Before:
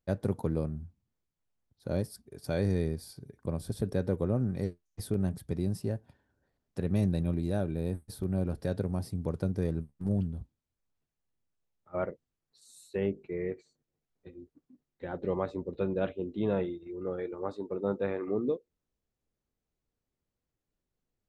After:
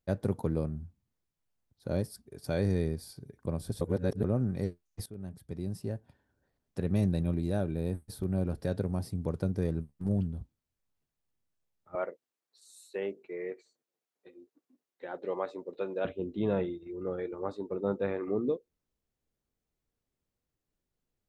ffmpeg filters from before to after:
ffmpeg -i in.wav -filter_complex "[0:a]asettb=1/sr,asplit=3[link_01][link_02][link_03];[link_01]atrim=end=11.954[link_04];[link_02]atrim=start=11.95:end=16.05,asetpts=PTS-STARTPTS,afade=type=in:duration=0.004:curve=qsin,afade=type=out:start_time=4.096:duration=0.004:curve=qsin,highpass=410[link_05];[link_03]atrim=start=16.046[link_06];[link_04][link_05]acrossfade=duration=0.004:curve1=hsin:curve2=qsin[link_07];[link_07][link_06]acrossfade=duration=0.004:curve1=qsin:curve2=hsin,asplit=4[link_08][link_09][link_10][link_11];[link_08]atrim=end=3.812[link_12];[link_09]atrim=start=3.808:end=4.242,asetpts=PTS-STARTPTS,areverse[link_13];[link_10]atrim=start=4.238:end=5.06,asetpts=PTS-STARTPTS,afade=type=out:start_time=0.818:duration=0.004:curve=hsin:silence=0.125893[link_14];[link_11]atrim=start=5.06,asetpts=PTS-STARTPTS,afade=type=in:duration=1.77:curve=qsin:silence=0.125893[link_15];[link_12][link_13]acrossfade=duration=0.004:curve1=hsin:curve2=hsin[link_16];[link_14][link_15]concat=n=2:v=0:a=1[link_17];[link_16][link_17]acrossfade=duration=0.004:curve1=hsin:curve2=hsin" out.wav

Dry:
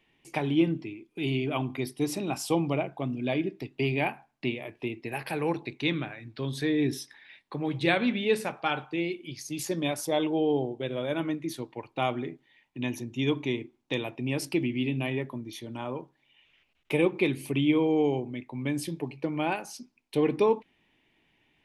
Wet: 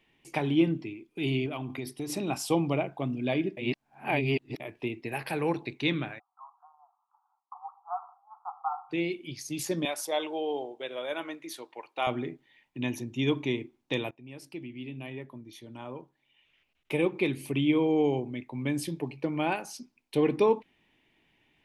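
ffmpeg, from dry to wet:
ffmpeg -i in.wav -filter_complex "[0:a]asettb=1/sr,asplit=3[link_01][link_02][link_03];[link_01]atrim=end=1.464[link_04];[link_02]atrim=start=1.46:end=2.1,asetpts=PTS-STARTPTS,afade=type=in:duration=0.004:curve=qsin,afade=type=out:start_time=0.636:duration=0.004:curve=qsin,acompressor=threshold=-31dB:ratio=6:attack=3.2:release=140:knee=1:detection=peak[link_05];[link_03]atrim=start=2.096[link_06];[link_04][link_05]acrossfade=duration=0.004:curve1=hsin:curve2=qsin[link_07];[link_07][link_06]acrossfade=duration=0.004:curve1=qsin:curve2=hsin,asplit=3[link_08][link_09][link_10];[link_08]afade=type=out:start_time=6.18:duration=0.02[link_11];[link_09]asuperpass=centerf=980:order=20:qfactor=1.6,afade=type=in:start_time=6.18:duration=0.02,afade=type=out:start_time=8.89:duration=0.02[link_12];[link_10]afade=type=in:start_time=8.89:duration=0.02[link_13];[link_11][link_12][link_13]amix=inputs=3:normalize=0,asettb=1/sr,asplit=3[link_14][link_15][link_16];[link_14]atrim=end=9.854[link_17];[link_15]atrim=start=9.85:end=12.07,asetpts=PTS-STARTPTS,afade=type=in:duration=0.004:curve=qsin,afade=type=out:start_time=2.216:duration=0.004:curve=qsin,highpass=550[link_18];[link_16]atrim=start=12.066[link_19];[link_17][link_18]acrossfade=duration=0.004:curve1=hsin:curve2=qsin[link_20];[link_20][link_19]acrossfade=duration=0.004:curve1=qsin:curve2=hsin,asplit=4[link_21][link_22][link_23][link_24];[link_21]atrim=end=3.572[link_25];[link_22]atrim=start=3.568:end=4.602,asetpts=PTS-STARTPTS,areverse[link_26];[link_23]atrim=start=4.598:end=14.11,asetpts=PTS-STARTPTS,afade=type=out:start_time=9.508:duration=0.004:curve=hsin:silence=0.11885[link_27];[link_24]atrim=start=14.11,asetpts=PTS-STARTPTS,afade=type=in:duration=4.1:silence=0.11885[link_28];[link_25][link_26]acrossfade=duration=0.004:curve1=hsin:curve2=hsin[link_29];[link_27][link_28]concat=n=2:v=0:a=1[link_30];[link_29][link_30]acrossfade=duration=0.004:curve1=hsin:curve2=hsin" out.wav

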